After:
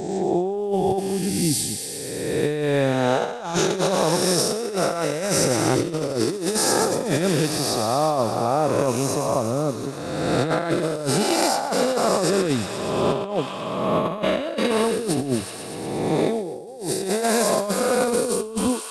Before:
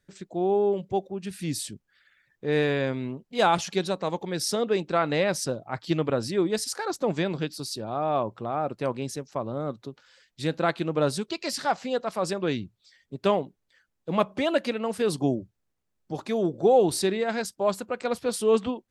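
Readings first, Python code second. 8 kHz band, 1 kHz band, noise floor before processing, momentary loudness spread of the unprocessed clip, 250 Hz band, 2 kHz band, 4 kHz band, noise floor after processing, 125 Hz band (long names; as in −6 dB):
+11.0 dB, +5.0 dB, −77 dBFS, 10 LU, +6.0 dB, +4.0 dB, +7.0 dB, −32 dBFS, +6.5 dB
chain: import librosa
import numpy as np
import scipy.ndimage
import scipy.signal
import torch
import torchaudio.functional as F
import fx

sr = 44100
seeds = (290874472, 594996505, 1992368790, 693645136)

y = fx.spec_swells(x, sr, rise_s=1.73)
y = fx.peak_eq(y, sr, hz=2400.0, db=-7.5, octaves=2.6)
y = fx.echo_wet_highpass(y, sr, ms=120, feedback_pct=80, hz=1600.0, wet_db=-6.5)
y = fx.over_compress(y, sr, threshold_db=-26.0, ratio=-0.5)
y = y * 10.0 ** (5.0 / 20.0)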